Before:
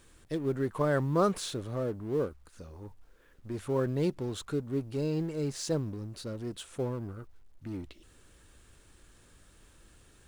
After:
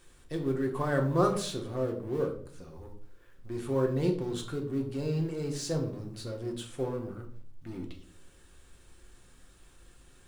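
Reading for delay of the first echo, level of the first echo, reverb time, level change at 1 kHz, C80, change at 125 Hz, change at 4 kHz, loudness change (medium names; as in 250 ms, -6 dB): no echo, no echo, 0.50 s, +1.0 dB, 14.0 dB, +1.0 dB, +0.5 dB, +0.5 dB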